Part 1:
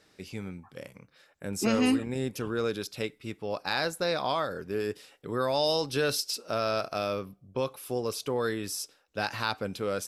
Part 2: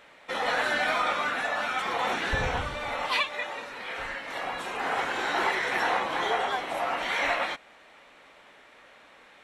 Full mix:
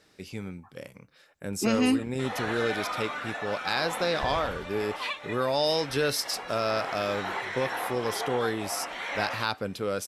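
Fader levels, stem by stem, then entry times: +1.0, -6.5 dB; 0.00, 1.90 s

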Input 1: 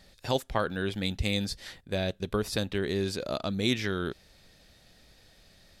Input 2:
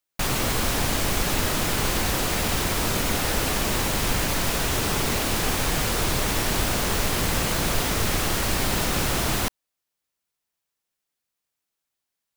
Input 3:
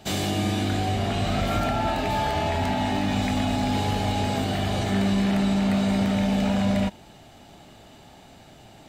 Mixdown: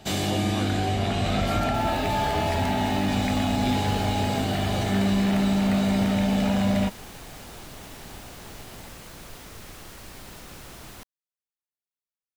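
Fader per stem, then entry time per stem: -8.5, -19.0, 0.0 dB; 0.00, 1.55, 0.00 s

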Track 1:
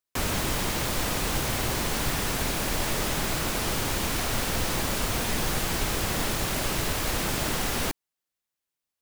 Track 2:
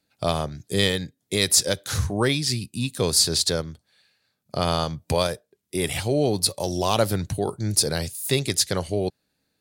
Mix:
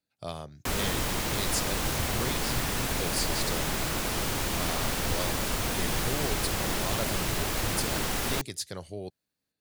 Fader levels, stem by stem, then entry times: -2.0, -13.5 dB; 0.50, 0.00 s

